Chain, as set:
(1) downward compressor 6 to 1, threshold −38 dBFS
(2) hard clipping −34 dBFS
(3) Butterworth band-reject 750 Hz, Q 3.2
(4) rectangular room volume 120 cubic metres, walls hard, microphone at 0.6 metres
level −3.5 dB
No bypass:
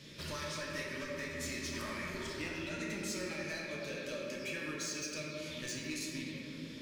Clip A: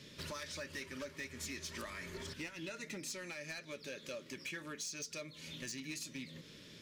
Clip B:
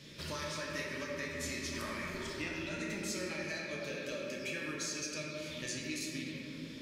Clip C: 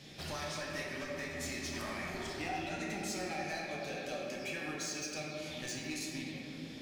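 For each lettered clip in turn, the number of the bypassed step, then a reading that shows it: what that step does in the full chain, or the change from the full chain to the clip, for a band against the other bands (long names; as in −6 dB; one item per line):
4, echo-to-direct ratio 4.0 dB to none audible
2, distortion level −15 dB
3, 1 kHz band +6.0 dB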